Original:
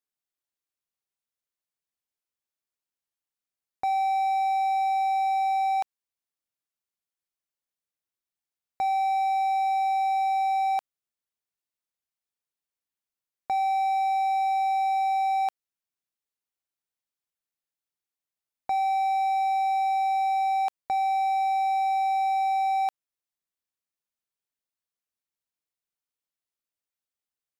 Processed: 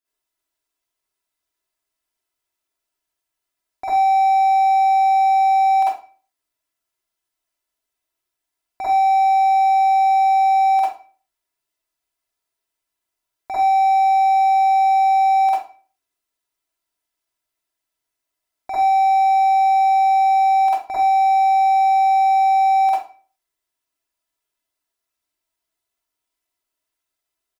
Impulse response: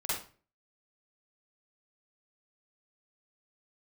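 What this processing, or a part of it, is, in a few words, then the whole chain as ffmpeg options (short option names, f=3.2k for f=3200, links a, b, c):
microphone above a desk: -filter_complex "[0:a]aecho=1:1:3:0.68[a];[1:a]atrim=start_sample=2205[b];[a][b]afir=irnorm=-1:irlink=0,volume=4dB"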